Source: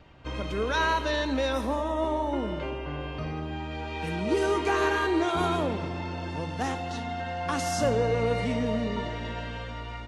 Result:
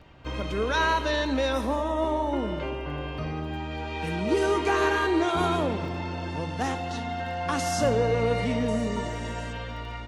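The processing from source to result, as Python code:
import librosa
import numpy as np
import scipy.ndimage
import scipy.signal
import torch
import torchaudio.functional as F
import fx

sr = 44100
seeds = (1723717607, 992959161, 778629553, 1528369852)

y = fx.high_shelf_res(x, sr, hz=5600.0, db=12.5, q=1.5, at=(8.68, 9.53))
y = fx.dmg_crackle(y, sr, seeds[0], per_s=11.0, level_db=-44.0)
y = F.gain(torch.from_numpy(y), 1.5).numpy()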